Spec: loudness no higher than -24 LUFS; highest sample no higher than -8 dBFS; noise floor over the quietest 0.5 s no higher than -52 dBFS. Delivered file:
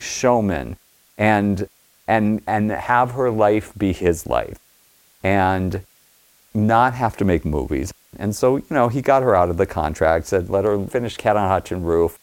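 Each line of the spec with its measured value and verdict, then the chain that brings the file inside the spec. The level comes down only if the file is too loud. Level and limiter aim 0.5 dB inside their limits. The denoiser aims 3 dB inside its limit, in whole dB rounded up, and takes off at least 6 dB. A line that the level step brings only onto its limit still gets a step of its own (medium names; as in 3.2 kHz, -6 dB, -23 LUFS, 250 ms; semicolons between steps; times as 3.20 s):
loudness -19.5 LUFS: fail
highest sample -2.5 dBFS: fail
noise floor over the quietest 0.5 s -56 dBFS: pass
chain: trim -5 dB; peak limiter -8.5 dBFS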